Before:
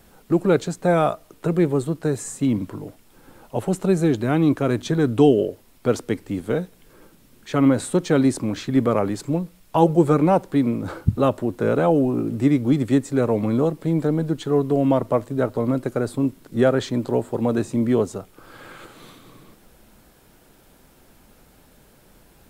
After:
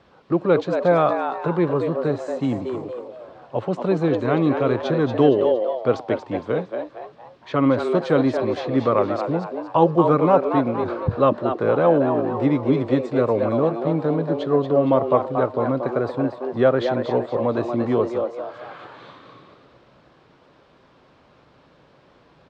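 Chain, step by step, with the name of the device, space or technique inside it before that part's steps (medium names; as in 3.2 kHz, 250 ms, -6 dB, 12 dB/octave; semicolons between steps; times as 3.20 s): frequency-shifting delay pedal into a guitar cabinet (frequency-shifting echo 232 ms, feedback 40%, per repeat +120 Hz, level -7 dB; cabinet simulation 84–4500 Hz, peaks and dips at 210 Hz -5 dB, 550 Hz +5 dB, 1.1 kHz +8 dB); trim -1.5 dB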